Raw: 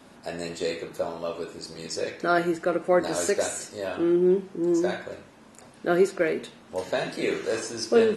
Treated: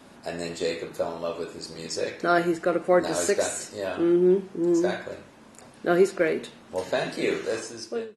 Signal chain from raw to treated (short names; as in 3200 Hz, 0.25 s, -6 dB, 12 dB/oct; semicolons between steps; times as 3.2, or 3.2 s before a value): ending faded out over 0.82 s; gain +1 dB